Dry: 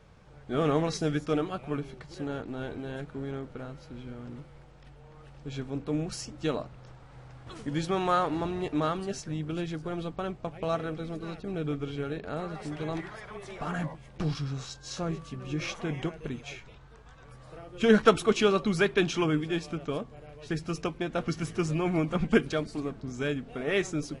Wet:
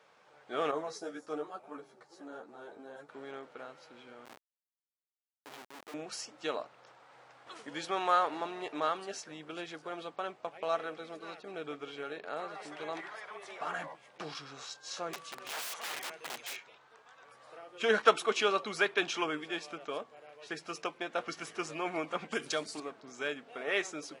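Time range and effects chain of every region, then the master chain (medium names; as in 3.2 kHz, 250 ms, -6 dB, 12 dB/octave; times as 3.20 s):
0.71–3.09 s: high-pass 48 Hz + peaking EQ 2.7 kHz -13 dB 1.4 oct + three-phase chorus
4.25–5.94 s: high-pass 210 Hz + Schmitt trigger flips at -40.5 dBFS
15.13–16.57 s: treble shelf 2.3 kHz +7.5 dB + de-hum 63.41 Hz, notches 3 + integer overflow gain 32 dB
22.32–22.80 s: tone controls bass +7 dB, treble +12 dB + compression 3:1, threshold -21 dBFS
whole clip: high-pass 590 Hz 12 dB/octave; treble shelf 5.3 kHz -4.5 dB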